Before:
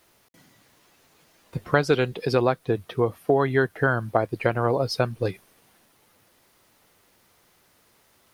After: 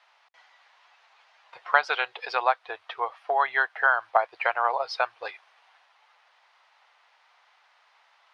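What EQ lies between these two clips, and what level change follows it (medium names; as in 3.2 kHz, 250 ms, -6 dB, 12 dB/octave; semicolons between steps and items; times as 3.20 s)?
elliptic band-pass 790–9600 Hz, stop band 50 dB; distance through air 240 m; +6.5 dB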